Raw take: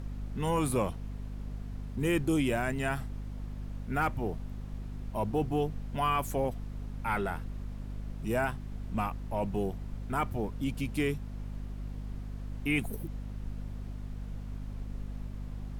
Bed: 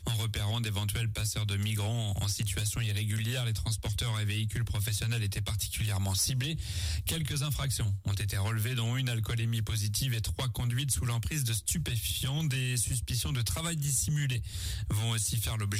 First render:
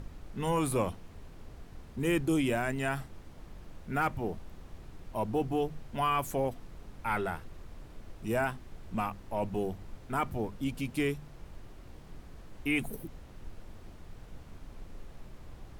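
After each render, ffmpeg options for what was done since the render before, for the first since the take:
ffmpeg -i in.wav -af "bandreject=frequency=50:width_type=h:width=6,bandreject=frequency=100:width_type=h:width=6,bandreject=frequency=150:width_type=h:width=6,bandreject=frequency=200:width_type=h:width=6,bandreject=frequency=250:width_type=h:width=6" out.wav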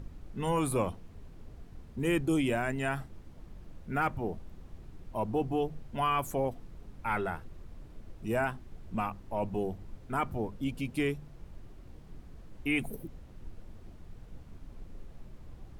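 ffmpeg -i in.wav -af "afftdn=noise_reduction=6:noise_floor=-50" out.wav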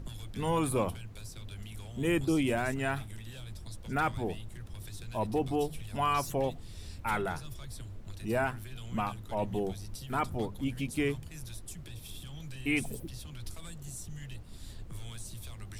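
ffmpeg -i in.wav -i bed.wav -filter_complex "[1:a]volume=-14.5dB[link_01];[0:a][link_01]amix=inputs=2:normalize=0" out.wav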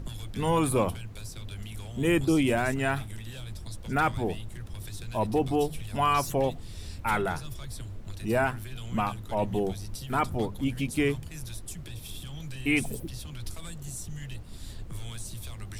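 ffmpeg -i in.wav -af "volume=4.5dB" out.wav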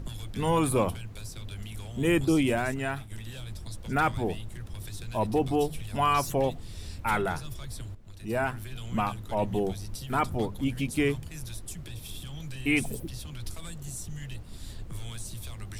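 ffmpeg -i in.wav -filter_complex "[0:a]asplit=3[link_01][link_02][link_03];[link_01]atrim=end=3.11,asetpts=PTS-STARTPTS,afade=type=out:start_time=2.36:duration=0.75:silence=0.473151[link_04];[link_02]atrim=start=3.11:end=7.95,asetpts=PTS-STARTPTS,afade=type=in:duration=0.004:curve=hsin:silence=0.473151,afade=type=out:start_time=4.836:duration=0.004:curve=hsin:silence=0.223872[link_05];[link_03]atrim=start=7.95,asetpts=PTS-STARTPTS,afade=type=in:duration=0.72:silence=0.223872[link_06];[link_04][link_05][link_06]concat=n=3:v=0:a=1" out.wav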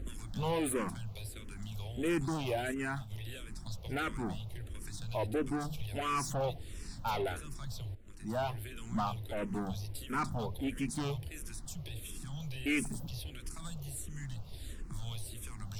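ffmpeg -i in.wav -filter_complex "[0:a]asoftclip=type=tanh:threshold=-26.5dB,asplit=2[link_01][link_02];[link_02]afreqshift=-1.5[link_03];[link_01][link_03]amix=inputs=2:normalize=1" out.wav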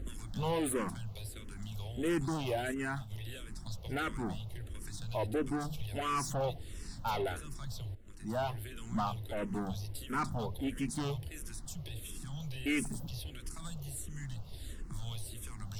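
ffmpeg -i in.wav -af "bandreject=frequency=2400:width=16" out.wav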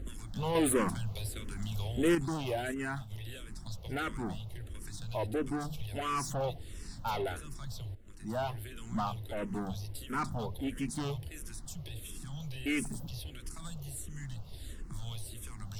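ffmpeg -i in.wav -filter_complex "[0:a]asplit=3[link_01][link_02][link_03];[link_01]atrim=end=0.552[link_04];[link_02]atrim=start=0.548:end=2.152,asetpts=PTS-STARTPTS,volume=5.5dB[link_05];[link_03]atrim=start=2.148[link_06];[link_04][link_05]acrossfade=duration=0.004:curve1=hsin:curve2=hsin[link_07];[link_07][link_06]acrossfade=duration=0.004:curve1=hsin:curve2=hsin" out.wav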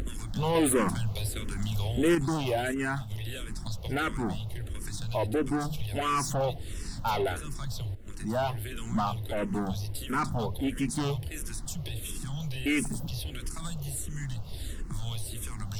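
ffmpeg -i in.wav -filter_complex "[0:a]asplit=2[link_01][link_02];[link_02]alimiter=level_in=2dB:limit=-24dB:level=0:latency=1:release=66,volume=-2dB,volume=0dB[link_03];[link_01][link_03]amix=inputs=2:normalize=0,acompressor=mode=upward:threshold=-30dB:ratio=2.5" out.wav

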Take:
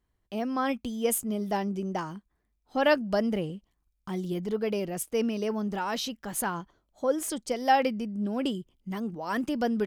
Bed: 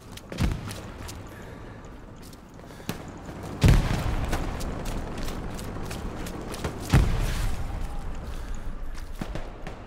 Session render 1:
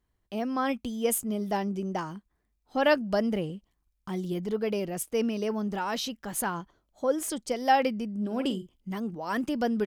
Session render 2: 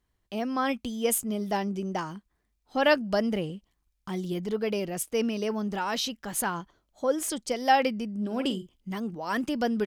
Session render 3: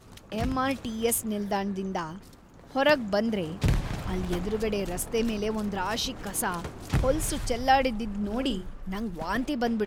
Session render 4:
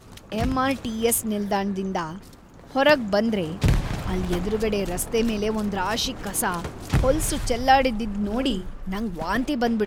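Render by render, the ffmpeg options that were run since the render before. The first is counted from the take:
ffmpeg -i in.wav -filter_complex "[0:a]asplit=3[link_01][link_02][link_03];[link_01]afade=type=out:start_time=8.21:duration=0.02[link_04];[link_02]asplit=2[link_05][link_06];[link_06]adelay=47,volume=-10dB[link_07];[link_05][link_07]amix=inputs=2:normalize=0,afade=type=in:start_time=8.21:duration=0.02,afade=type=out:start_time=8.75:duration=0.02[link_08];[link_03]afade=type=in:start_time=8.75:duration=0.02[link_09];[link_04][link_08][link_09]amix=inputs=3:normalize=0" out.wav
ffmpeg -i in.wav -af "equalizer=frequency=4100:width=0.39:gain=3.5" out.wav
ffmpeg -i in.wav -i bed.wav -filter_complex "[1:a]volume=-6.5dB[link_01];[0:a][link_01]amix=inputs=2:normalize=0" out.wav
ffmpeg -i in.wav -af "volume=4.5dB" out.wav

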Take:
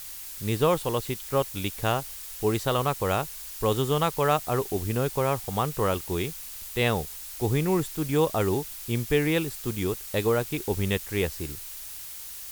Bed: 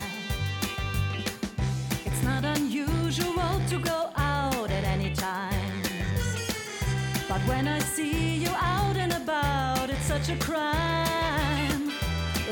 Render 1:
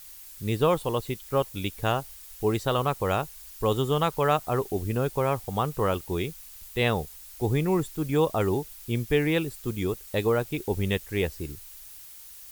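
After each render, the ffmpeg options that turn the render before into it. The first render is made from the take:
ffmpeg -i in.wav -af "afftdn=noise_reduction=8:noise_floor=-40" out.wav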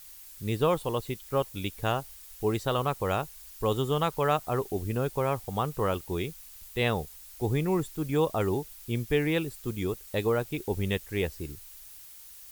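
ffmpeg -i in.wav -af "volume=-2.5dB" out.wav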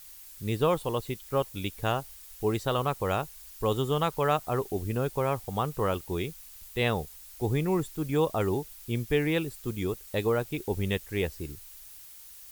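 ffmpeg -i in.wav -af anull out.wav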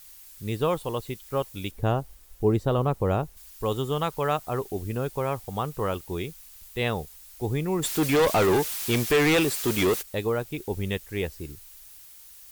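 ffmpeg -i in.wav -filter_complex "[0:a]asettb=1/sr,asplit=3[link_01][link_02][link_03];[link_01]atrim=end=1.714[link_04];[link_02]atrim=start=1.71:end=3.37,asetpts=PTS-STARTPTS,afade=type=in:duration=0.004:curve=qsin,afade=type=out:start_time=1.656:duration=0.004:curve=qsin,tiltshelf=frequency=970:gain=7.5[link_05];[link_03]atrim=start=3.366[link_06];[link_04][link_05]acrossfade=duration=0.004:curve1=hsin:curve2=qsin[link_07];[link_07][link_06]acrossfade=duration=0.004:curve1=qsin:curve2=hsin,asplit=3[link_08][link_09][link_10];[link_08]afade=type=out:start_time=7.82:duration=0.02[link_11];[link_09]asplit=2[link_12][link_13];[link_13]highpass=frequency=720:poles=1,volume=28dB,asoftclip=type=tanh:threshold=-13.5dB[link_14];[link_12][link_14]amix=inputs=2:normalize=0,lowpass=frequency=6900:poles=1,volume=-6dB,afade=type=in:start_time=7.82:duration=0.02,afade=type=out:start_time=10.01:duration=0.02[link_15];[link_10]afade=type=in:start_time=10.01:duration=0.02[link_16];[link_11][link_15][link_16]amix=inputs=3:normalize=0" out.wav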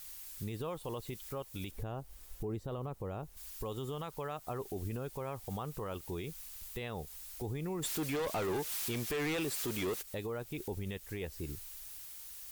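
ffmpeg -i in.wav -af "acompressor=threshold=-32dB:ratio=12,alimiter=level_in=5.5dB:limit=-24dB:level=0:latency=1:release=24,volume=-5.5dB" out.wav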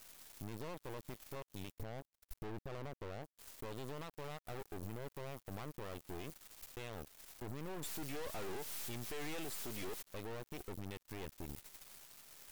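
ffmpeg -i in.wav -af "aeval=exprs='(tanh(141*val(0)+0.45)-tanh(0.45))/141':channel_layout=same,acrusher=bits=6:mix=0:aa=0.5" out.wav

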